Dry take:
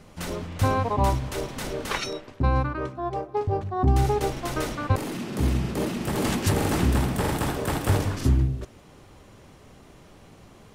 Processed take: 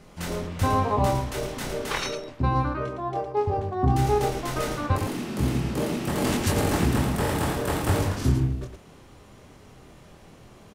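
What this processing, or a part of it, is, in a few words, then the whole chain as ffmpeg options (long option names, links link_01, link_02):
slapback doubling: -filter_complex "[0:a]asplit=3[link_01][link_02][link_03];[link_02]adelay=24,volume=-4dB[link_04];[link_03]adelay=111,volume=-6.5dB[link_05];[link_01][link_04][link_05]amix=inputs=3:normalize=0,volume=-1.5dB"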